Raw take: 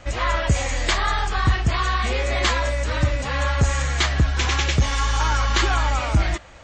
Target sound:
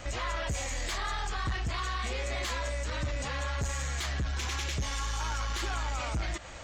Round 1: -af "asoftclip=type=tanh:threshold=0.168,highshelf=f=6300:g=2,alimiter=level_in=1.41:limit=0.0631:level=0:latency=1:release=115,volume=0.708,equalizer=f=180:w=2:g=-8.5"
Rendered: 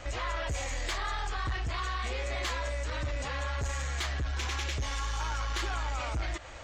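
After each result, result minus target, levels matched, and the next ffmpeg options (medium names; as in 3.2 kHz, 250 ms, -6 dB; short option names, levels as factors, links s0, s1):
8 kHz band -3.0 dB; 250 Hz band -2.5 dB
-af "asoftclip=type=tanh:threshold=0.168,highshelf=f=6300:g=10,alimiter=level_in=1.41:limit=0.0631:level=0:latency=1:release=115,volume=0.708,equalizer=f=180:w=2:g=-8.5"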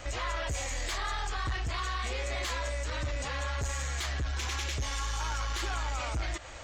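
250 Hz band -3.0 dB
-af "asoftclip=type=tanh:threshold=0.168,highshelf=f=6300:g=10,alimiter=level_in=1.41:limit=0.0631:level=0:latency=1:release=115,volume=0.708"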